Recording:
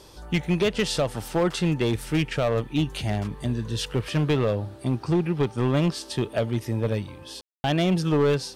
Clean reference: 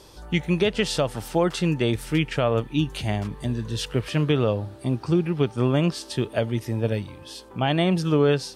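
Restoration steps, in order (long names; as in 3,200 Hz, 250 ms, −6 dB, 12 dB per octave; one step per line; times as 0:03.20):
clipped peaks rebuilt −16.5 dBFS
ambience match 0:07.41–0:07.64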